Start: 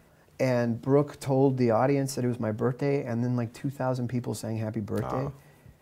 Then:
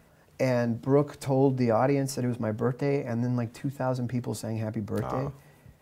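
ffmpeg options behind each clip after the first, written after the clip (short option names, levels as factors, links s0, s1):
-af "bandreject=f=360:w=12"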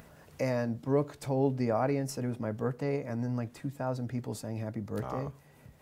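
-af "acompressor=mode=upward:threshold=0.01:ratio=2.5,volume=0.562"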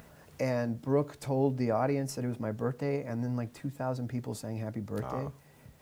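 -af "acrusher=bits=10:mix=0:aa=0.000001"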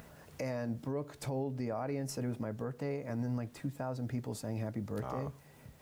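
-af "alimiter=level_in=1.33:limit=0.0631:level=0:latency=1:release=224,volume=0.75"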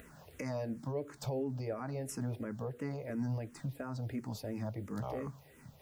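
-filter_complex "[0:a]asplit=2[s0][s1];[s1]afreqshift=-2.9[s2];[s0][s2]amix=inputs=2:normalize=1,volume=1.26"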